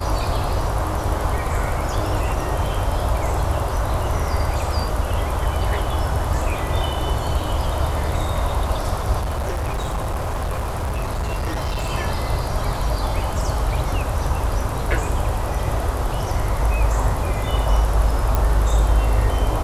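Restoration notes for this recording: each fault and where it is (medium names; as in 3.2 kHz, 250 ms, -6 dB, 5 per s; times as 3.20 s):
9.18–11.91 s: clipped -20 dBFS
18.35 s: pop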